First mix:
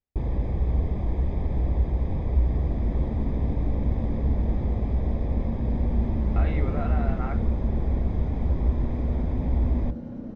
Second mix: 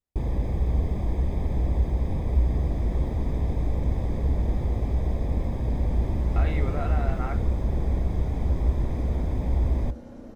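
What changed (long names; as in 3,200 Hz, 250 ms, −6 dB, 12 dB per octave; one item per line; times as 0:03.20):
second sound: add parametric band 160 Hz −13 dB 1.5 octaves
master: remove high-frequency loss of the air 160 metres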